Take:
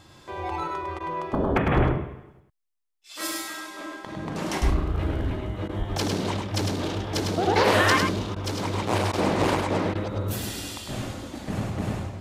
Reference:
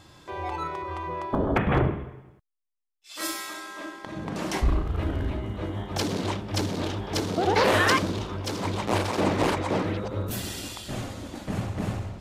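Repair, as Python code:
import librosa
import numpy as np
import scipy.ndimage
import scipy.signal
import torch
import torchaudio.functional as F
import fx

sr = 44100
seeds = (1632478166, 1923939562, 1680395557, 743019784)

y = fx.highpass(x, sr, hz=140.0, slope=24, at=(1.76, 1.88), fade=0.02)
y = fx.highpass(y, sr, hz=140.0, slope=24, at=(5.78, 5.9), fade=0.02)
y = fx.fix_interpolate(y, sr, at_s=(0.99, 5.68, 8.35, 9.12, 9.94), length_ms=11.0)
y = fx.fix_echo_inverse(y, sr, delay_ms=103, level_db=-4.5)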